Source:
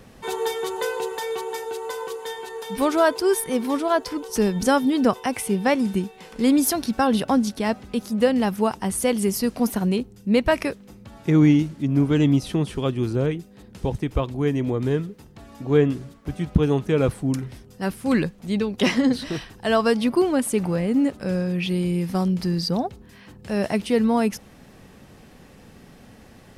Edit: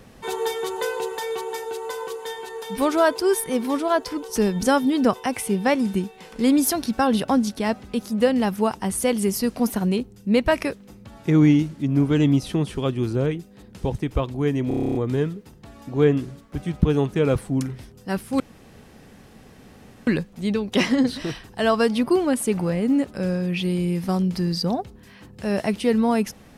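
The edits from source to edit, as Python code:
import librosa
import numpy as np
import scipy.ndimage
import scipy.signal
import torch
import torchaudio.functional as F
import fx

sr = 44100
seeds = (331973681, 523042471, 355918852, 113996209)

y = fx.edit(x, sr, fx.stutter(start_s=14.68, slice_s=0.03, count=10),
    fx.insert_room_tone(at_s=18.13, length_s=1.67), tone=tone)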